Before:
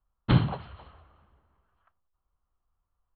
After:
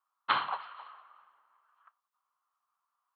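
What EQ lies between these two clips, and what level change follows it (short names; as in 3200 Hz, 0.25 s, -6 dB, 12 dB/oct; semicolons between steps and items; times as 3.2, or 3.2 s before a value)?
resonant high-pass 1100 Hz, resonance Q 2.7; 0.0 dB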